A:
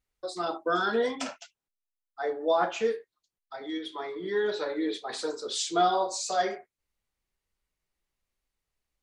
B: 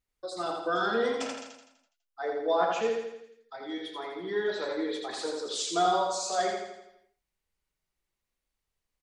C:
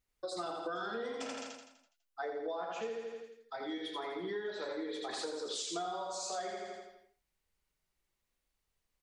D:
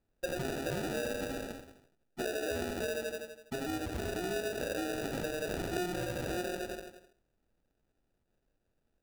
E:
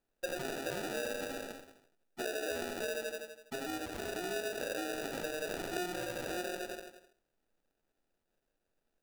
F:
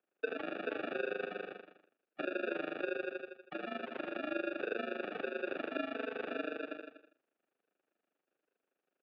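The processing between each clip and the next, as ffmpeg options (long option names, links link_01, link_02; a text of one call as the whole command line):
ffmpeg -i in.wav -af "aecho=1:1:83|166|249|332|415|498|581:0.631|0.328|0.171|0.0887|0.0461|0.024|0.0125,volume=-2.5dB" out.wav
ffmpeg -i in.wav -af "acompressor=threshold=-37dB:ratio=10,volume=1dB" out.wav
ffmpeg -i in.wav -filter_complex "[0:a]asplit=2[link_01][link_02];[link_02]alimiter=level_in=11dB:limit=-24dB:level=0:latency=1,volume=-11dB,volume=-2dB[link_03];[link_01][link_03]amix=inputs=2:normalize=0,acrusher=samples=41:mix=1:aa=0.000001" out.wav
ffmpeg -i in.wav -af "equalizer=frequency=68:width=0.35:gain=-13" out.wav
ffmpeg -i in.wav -af "tremolo=f=25:d=0.857,highpass=frequency=360:width_type=q:width=0.5412,highpass=frequency=360:width_type=q:width=1.307,lowpass=frequency=3200:width_type=q:width=0.5176,lowpass=frequency=3200:width_type=q:width=0.7071,lowpass=frequency=3200:width_type=q:width=1.932,afreqshift=-79,volume=4.5dB" out.wav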